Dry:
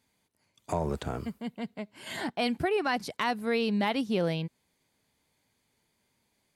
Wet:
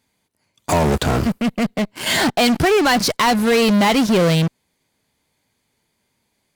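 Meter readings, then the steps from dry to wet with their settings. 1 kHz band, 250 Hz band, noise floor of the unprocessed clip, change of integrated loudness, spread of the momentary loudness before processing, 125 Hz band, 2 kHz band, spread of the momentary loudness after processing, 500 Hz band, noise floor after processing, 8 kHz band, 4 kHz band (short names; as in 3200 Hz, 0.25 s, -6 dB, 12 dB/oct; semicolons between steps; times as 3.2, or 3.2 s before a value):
+13.5 dB, +14.5 dB, -75 dBFS, +14.0 dB, 11 LU, +15.5 dB, +14.0 dB, 7 LU, +13.0 dB, -70 dBFS, +23.0 dB, +16.5 dB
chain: dynamic EQ 5300 Hz, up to +5 dB, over -49 dBFS, Q 1; in parallel at -9 dB: fuzz box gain 42 dB, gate -48 dBFS; on the sum: gain +5 dB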